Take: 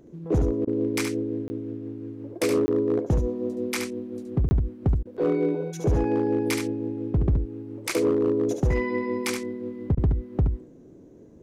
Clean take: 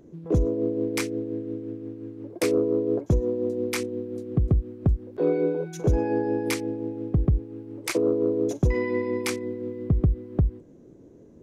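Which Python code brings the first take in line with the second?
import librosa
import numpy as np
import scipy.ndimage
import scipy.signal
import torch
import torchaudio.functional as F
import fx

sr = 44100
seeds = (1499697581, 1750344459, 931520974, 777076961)

y = fx.fix_declip(x, sr, threshold_db=-16.5)
y = fx.fix_interpolate(y, sr, at_s=(1.48, 2.66, 4.49), length_ms=20.0)
y = fx.fix_interpolate(y, sr, at_s=(0.65, 5.03, 9.95), length_ms=22.0)
y = fx.fix_echo_inverse(y, sr, delay_ms=72, level_db=-6.0)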